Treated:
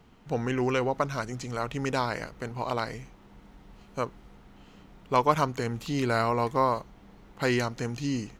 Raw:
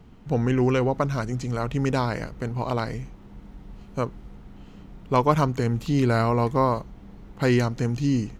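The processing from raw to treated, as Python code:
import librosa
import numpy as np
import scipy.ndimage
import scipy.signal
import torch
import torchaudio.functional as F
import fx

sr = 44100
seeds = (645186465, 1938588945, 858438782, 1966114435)

y = fx.low_shelf(x, sr, hz=360.0, db=-10.5)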